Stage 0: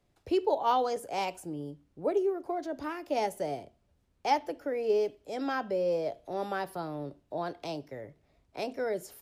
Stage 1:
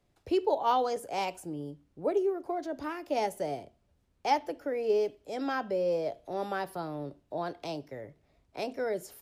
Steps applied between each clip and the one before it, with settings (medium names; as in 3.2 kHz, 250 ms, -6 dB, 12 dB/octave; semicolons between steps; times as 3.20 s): no audible change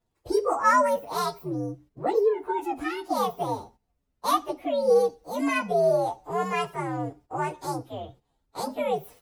frequency axis rescaled in octaves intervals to 125%; gate -59 dBFS, range -10 dB; trim +8.5 dB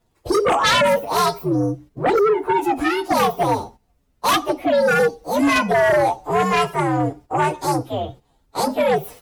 sine folder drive 11 dB, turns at -9.5 dBFS; trim -3 dB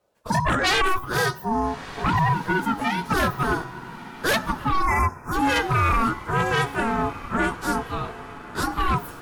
echo that smears into a reverb 1341 ms, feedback 44%, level -15 dB; time-frequency box 4.86–5.32 s, 2.1–5.4 kHz -25 dB; ring modulator 560 Hz; trim -1.5 dB